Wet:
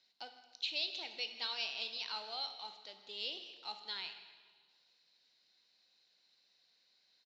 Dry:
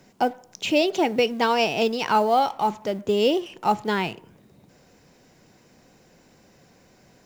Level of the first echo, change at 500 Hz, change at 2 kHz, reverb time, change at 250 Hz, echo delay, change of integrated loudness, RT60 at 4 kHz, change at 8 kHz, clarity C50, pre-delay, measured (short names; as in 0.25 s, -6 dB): -18.5 dB, -31.5 dB, -16.0 dB, 1.6 s, -37.0 dB, 0.158 s, -17.0 dB, 1.5 s, -20.0 dB, 9.0 dB, 7 ms